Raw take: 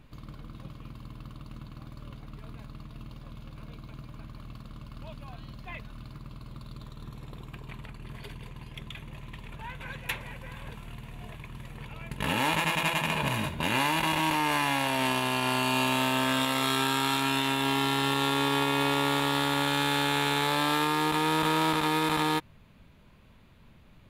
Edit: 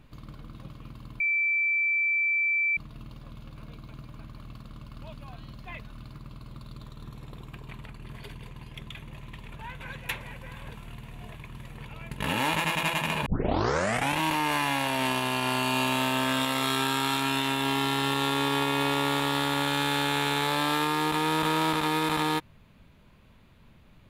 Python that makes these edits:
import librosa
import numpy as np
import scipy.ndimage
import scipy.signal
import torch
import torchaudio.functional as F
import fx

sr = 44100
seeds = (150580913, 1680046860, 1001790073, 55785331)

y = fx.edit(x, sr, fx.bleep(start_s=1.2, length_s=1.57, hz=2330.0, db=-22.5),
    fx.tape_start(start_s=13.26, length_s=0.92), tone=tone)